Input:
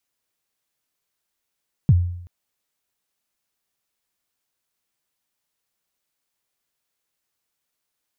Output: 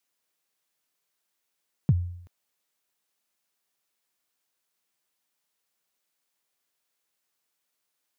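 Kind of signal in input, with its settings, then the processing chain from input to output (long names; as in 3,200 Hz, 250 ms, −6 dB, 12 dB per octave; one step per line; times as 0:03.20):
synth kick length 0.38 s, from 170 Hz, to 88 Hz, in 40 ms, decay 0.72 s, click off, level −8 dB
high-pass filter 210 Hz 6 dB per octave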